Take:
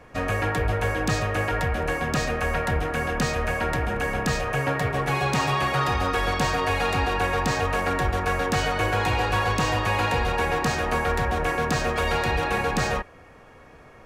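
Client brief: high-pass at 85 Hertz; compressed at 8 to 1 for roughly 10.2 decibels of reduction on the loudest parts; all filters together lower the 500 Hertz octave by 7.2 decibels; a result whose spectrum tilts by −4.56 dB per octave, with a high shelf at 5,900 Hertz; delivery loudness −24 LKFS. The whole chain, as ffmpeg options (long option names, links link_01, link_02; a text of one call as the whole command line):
ffmpeg -i in.wav -af "highpass=85,equalizer=frequency=500:width_type=o:gain=-8.5,highshelf=frequency=5900:gain=-4,acompressor=threshold=-32dB:ratio=8,volume=11dB" out.wav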